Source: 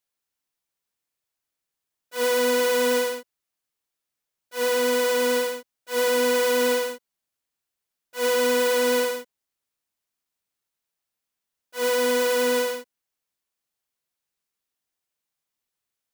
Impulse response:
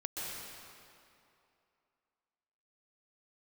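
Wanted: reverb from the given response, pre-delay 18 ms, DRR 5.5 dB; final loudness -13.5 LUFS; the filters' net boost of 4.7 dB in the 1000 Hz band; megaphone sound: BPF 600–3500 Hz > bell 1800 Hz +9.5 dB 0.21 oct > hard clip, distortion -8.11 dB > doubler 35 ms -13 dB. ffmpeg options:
-filter_complex "[0:a]equalizer=f=1k:t=o:g=5.5,asplit=2[a][b];[1:a]atrim=start_sample=2205,adelay=18[c];[b][c]afir=irnorm=-1:irlink=0,volume=-8dB[d];[a][d]amix=inputs=2:normalize=0,highpass=600,lowpass=3.5k,equalizer=f=1.8k:t=o:w=0.21:g=9.5,asoftclip=type=hard:threshold=-24dB,asplit=2[e][f];[f]adelay=35,volume=-13dB[g];[e][g]amix=inputs=2:normalize=0,volume=14.5dB"

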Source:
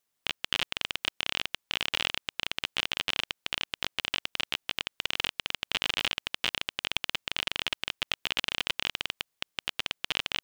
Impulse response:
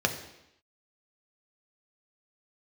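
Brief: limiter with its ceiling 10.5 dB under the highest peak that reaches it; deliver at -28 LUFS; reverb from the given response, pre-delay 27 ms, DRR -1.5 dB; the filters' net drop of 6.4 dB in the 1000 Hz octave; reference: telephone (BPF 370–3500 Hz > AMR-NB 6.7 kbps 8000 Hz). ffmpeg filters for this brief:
-filter_complex "[0:a]equalizer=f=1k:t=o:g=-8.5,alimiter=limit=-17.5dB:level=0:latency=1,asplit=2[a][b];[1:a]atrim=start_sample=2205,adelay=27[c];[b][c]afir=irnorm=-1:irlink=0,volume=-9dB[d];[a][d]amix=inputs=2:normalize=0,highpass=370,lowpass=3.5k,volume=14dB" -ar 8000 -c:a libopencore_amrnb -b:a 6700

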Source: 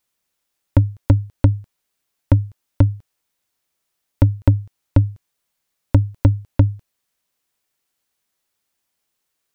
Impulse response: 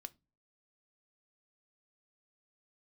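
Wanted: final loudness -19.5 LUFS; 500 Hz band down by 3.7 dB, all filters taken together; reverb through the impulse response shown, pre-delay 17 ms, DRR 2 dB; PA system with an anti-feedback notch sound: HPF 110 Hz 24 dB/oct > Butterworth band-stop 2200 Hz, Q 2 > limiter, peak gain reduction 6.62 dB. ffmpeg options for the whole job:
-filter_complex "[0:a]equalizer=f=500:t=o:g=-4.5,asplit=2[a][b];[1:a]atrim=start_sample=2205,adelay=17[c];[b][c]afir=irnorm=-1:irlink=0,volume=3.5dB[d];[a][d]amix=inputs=2:normalize=0,highpass=f=110:w=0.5412,highpass=f=110:w=1.3066,asuperstop=centerf=2200:order=8:qfactor=2,volume=6.5dB,alimiter=limit=-5.5dB:level=0:latency=1"

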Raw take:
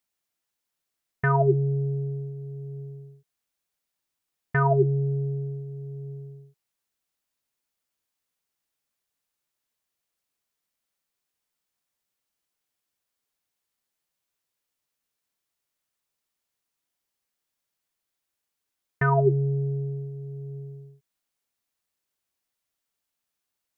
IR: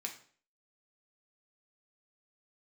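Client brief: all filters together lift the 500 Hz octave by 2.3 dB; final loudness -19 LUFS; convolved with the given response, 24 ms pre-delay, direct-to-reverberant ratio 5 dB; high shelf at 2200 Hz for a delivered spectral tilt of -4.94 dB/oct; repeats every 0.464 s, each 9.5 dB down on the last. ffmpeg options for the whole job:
-filter_complex "[0:a]equalizer=f=500:t=o:g=3,highshelf=f=2.2k:g=3.5,aecho=1:1:464|928|1392|1856:0.335|0.111|0.0365|0.012,asplit=2[a][b];[1:a]atrim=start_sample=2205,adelay=24[c];[b][c]afir=irnorm=-1:irlink=0,volume=-4.5dB[d];[a][d]amix=inputs=2:normalize=0,volume=5dB"

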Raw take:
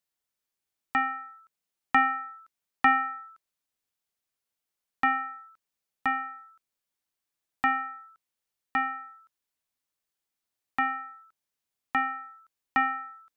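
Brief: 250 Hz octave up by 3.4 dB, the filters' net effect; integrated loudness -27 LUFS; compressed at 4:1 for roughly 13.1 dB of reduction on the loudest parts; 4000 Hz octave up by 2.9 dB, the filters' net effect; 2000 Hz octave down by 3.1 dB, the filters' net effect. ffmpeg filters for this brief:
-af "equalizer=f=250:t=o:g=3.5,equalizer=f=2k:t=o:g=-5,equalizer=f=4k:t=o:g=8.5,acompressor=threshold=-34dB:ratio=4,volume=12.5dB"

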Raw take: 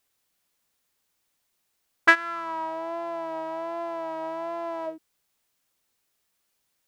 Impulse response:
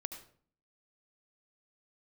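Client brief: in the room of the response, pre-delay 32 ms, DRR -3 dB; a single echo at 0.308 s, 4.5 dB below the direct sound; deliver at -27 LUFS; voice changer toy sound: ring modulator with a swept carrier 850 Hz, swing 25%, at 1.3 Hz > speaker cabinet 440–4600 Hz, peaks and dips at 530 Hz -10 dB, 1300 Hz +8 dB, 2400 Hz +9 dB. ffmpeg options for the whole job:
-filter_complex "[0:a]aecho=1:1:308:0.596,asplit=2[a][b];[1:a]atrim=start_sample=2205,adelay=32[c];[b][c]afir=irnorm=-1:irlink=0,volume=4.5dB[d];[a][d]amix=inputs=2:normalize=0,aeval=exprs='val(0)*sin(2*PI*850*n/s+850*0.25/1.3*sin(2*PI*1.3*n/s))':c=same,highpass=440,equalizer=f=530:t=q:w=4:g=-10,equalizer=f=1.3k:t=q:w=4:g=8,equalizer=f=2.4k:t=q:w=4:g=9,lowpass=f=4.6k:w=0.5412,lowpass=f=4.6k:w=1.3066,volume=-7dB"

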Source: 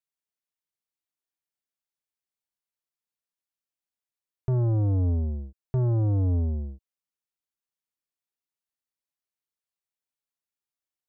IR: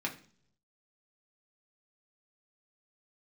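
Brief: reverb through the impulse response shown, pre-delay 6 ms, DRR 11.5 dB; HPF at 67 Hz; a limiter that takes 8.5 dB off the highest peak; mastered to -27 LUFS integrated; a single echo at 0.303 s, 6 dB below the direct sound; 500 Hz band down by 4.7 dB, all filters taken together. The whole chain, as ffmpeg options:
-filter_complex "[0:a]highpass=67,equalizer=f=500:t=o:g=-7,alimiter=level_in=3.5dB:limit=-24dB:level=0:latency=1,volume=-3.5dB,aecho=1:1:303:0.501,asplit=2[a][b];[1:a]atrim=start_sample=2205,adelay=6[c];[b][c]afir=irnorm=-1:irlink=0,volume=-15.5dB[d];[a][d]amix=inputs=2:normalize=0,volume=7.5dB"

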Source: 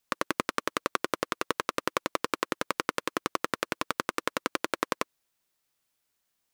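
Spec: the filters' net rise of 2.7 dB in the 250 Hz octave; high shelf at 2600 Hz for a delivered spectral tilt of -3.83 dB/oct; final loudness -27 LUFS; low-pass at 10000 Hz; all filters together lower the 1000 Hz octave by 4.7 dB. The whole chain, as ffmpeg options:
-af "lowpass=10k,equalizer=f=250:t=o:g=4,equalizer=f=1k:t=o:g=-5,highshelf=f=2.6k:g=-5,volume=7dB"

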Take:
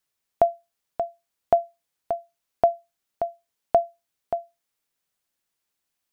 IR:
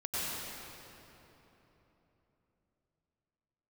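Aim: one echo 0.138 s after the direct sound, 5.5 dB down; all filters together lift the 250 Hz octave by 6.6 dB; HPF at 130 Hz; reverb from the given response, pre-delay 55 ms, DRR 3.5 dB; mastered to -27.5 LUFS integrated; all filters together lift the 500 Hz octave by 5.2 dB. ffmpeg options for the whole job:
-filter_complex "[0:a]highpass=130,equalizer=f=250:t=o:g=6,equalizer=f=500:t=o:g=8,aecho=1:1:138:0.531,asplit=2[a][b];[1:a]atrim=start_sample=2205,adelay=55[c];[b][c]afir=irnorm=-1:irlink=0,volume=-10dB[d];[a][d]amix=inputs=2:normalize=0,volume=-6dB"

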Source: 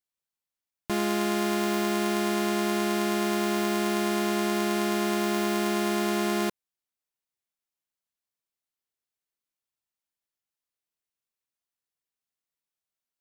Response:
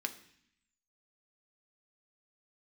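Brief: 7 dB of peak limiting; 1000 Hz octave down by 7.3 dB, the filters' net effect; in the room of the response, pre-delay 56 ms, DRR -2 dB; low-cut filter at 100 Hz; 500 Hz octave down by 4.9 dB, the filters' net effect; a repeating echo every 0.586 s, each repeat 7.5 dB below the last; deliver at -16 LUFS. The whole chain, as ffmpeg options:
-filter_complex "[0:a]highpass=100,equalizer=f=500:t=o:g=-6,equalizer=f=1k:t=o:g=-8,alimiter=limit=-22.5dB:level=0:latency=1,aecho=1:1:586|1172|1758|2344|2930:0.422|0.177|0.0744|0.0312|0.0131,asplit=2[a][b];[1:a]atrim=start_sample=2205,adelay=56[c];[b][c]afir=irnorm=-1:irlink=0,volume=0.5dB[d];[a][d]amix=inputs=2:normalize=0,volume=16.5dB"

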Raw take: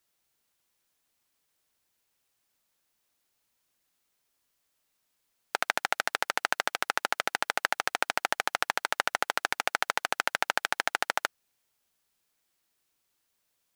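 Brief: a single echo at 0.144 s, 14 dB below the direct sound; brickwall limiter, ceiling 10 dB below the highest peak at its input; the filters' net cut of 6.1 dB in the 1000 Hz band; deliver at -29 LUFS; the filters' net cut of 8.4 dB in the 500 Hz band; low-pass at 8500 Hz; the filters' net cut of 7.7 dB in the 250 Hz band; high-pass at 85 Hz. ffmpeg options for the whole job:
-af "highpass=85,lowpass=8.5k,equalizer=f=250:t=o:g=-7,equalizer=f=500:t=o:g=-7.5,equalizer=f=1k:t=o:g=-6,alimiter=limit=-16dB:level=0:latency=1,aecho=1:1:144:0.2,volume=12dB"

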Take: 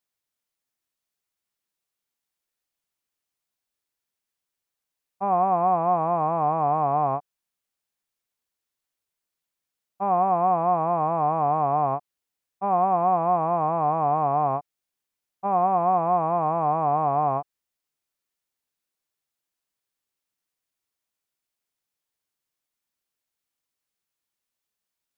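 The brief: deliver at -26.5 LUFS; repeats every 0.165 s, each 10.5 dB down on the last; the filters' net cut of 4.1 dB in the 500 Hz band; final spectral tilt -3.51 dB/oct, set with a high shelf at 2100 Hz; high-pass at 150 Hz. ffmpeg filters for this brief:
-af "highpass=150,equalizer=f=500:t=o:g=-8,highshelf=f=2.1k:g=8,aecho=1:1:165|330|495:0.299|0.0896|0.0269,volume=-1.5dB"

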